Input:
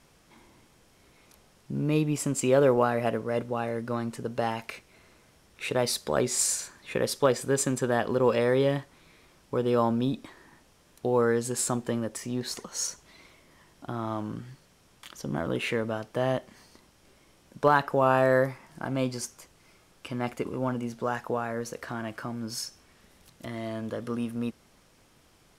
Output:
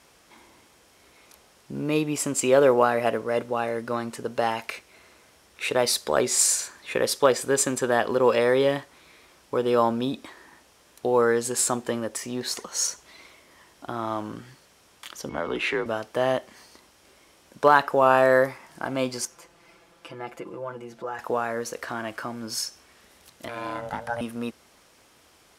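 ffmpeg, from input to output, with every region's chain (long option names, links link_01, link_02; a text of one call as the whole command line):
ffmpeg -i in.wav -filter_complex "[0:a]asettb=1/sr,asplit=3[link_01][link_02][link_03];[link_01]atrim=end=15.294[link_04];[link_02]atrim=start=15.29:end=15.86,asetpts=PTS-STARTPTS,afade=type=in:duration=0.004:curve=qsin,afade=type=out:start_time=0.566:duration=0.004:curve=qsin,acrossover=split=230 6000:gain=0.141 1 0.251[link_05][link_06][link_07];[link_05][link_06][link_07]amix=inputs=3:normalize=0,afreqshift=-69,aeval=exprs='val(0)+0.00178*sin(2*PI*2200*n/s)':channel_layout=same[link_08];[link_03]atrim=start=15.856[link_09];[link_04][link_08]acrossfade=duration=0.004:curve1=hsin:curve2=qsin[link_10];[link_10][link_09]acrossfade=duration=0.004:curve1=qsin:curve2=hsin,asettb=1/sr,asplit=3[link_11][link_12][link_13];[link_11]atrim=end=19.254[link_14];[link_12]atrim=start=19.25:end=21.19,asetpts=PTS-STARTPTS,afade=type=in:duration=0.004:curve=qsin,afade=type=out:start_time=1.936:duration=0.004:curve=qsin,highshelf=frequency=3200:gain=-9.5,aecho=1:1:5.9:0.92,atrim=end_sample=85554,acompressor=threshold=-50dB:ratio=1.5:attack=3.2:release=140:knee=1:detection=peak[link_15];[link_13]atrim=start=21.186[link_16];[link_14][link_15]acrossfade=duration=0.004:curve1=hsin:curve2=qsin[link_17];[link_17][link_16]acrossfade=duration=0.004:curve1=qsin:curve2=hsin,asettb=1/sr,asplit=3[link_18][link_19][link_20];[link_18]atrim=end=23.484[link_21];[link_19]atrim=start=23.48:end=24.21,asetpts=PTS-STARTPTS,afade=type=in:duration=0.004:curve=qsin,afade=type=out:start_time=0.726:duration=0.004:curve=qsin,highpass=45,equalizer=frequency=1100:width_type=o:width=0.85:gain=10,aeval=exprs='val(0)*sin(2*PI*350*n/s)':channel_layout=same[link_22];[link_20]atrim=start=24.206[link_23];[link_21][link_22]acrossfade=duration=0.004:curve1=hsin:curve2=qsin[link_24];[link_24][link_23]acrossfade=duration=0.004:curve1=qsin:curve2=hsin,highpass=67,equalizer=frequency=140:width=0.73:gain=-10.5,volume=5.5dB" out.wav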